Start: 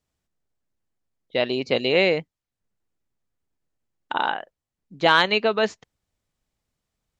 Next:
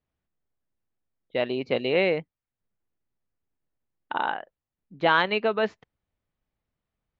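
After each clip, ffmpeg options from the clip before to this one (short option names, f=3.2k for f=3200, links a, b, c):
-af "lowpass=2.7k,volume=-3dB"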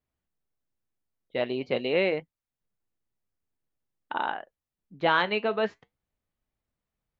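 -af "flanger=delay=2.9:depth=7:regen=-73:speed=0.46:shape=sinusoidal,volume=2dB"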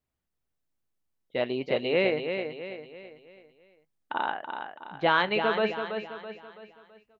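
-af "aecho=1:1:330|660|990|1320|1650:0.447|0.192|0.0826|0.0355|0.0153"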